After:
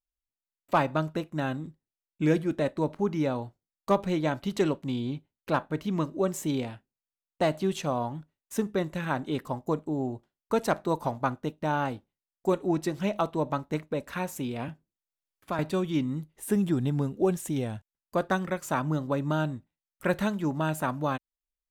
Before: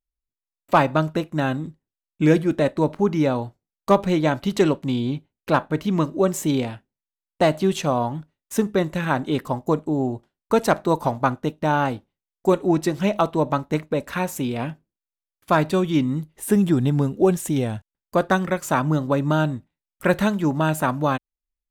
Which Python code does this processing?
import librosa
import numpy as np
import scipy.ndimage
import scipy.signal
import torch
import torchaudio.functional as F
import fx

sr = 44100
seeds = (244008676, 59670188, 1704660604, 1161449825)

y = fx.band_squash(x, sr, depth_pct=40, at=(14.68, 15.59))
y = y * 10.0 ** (-7.5 / 20.0)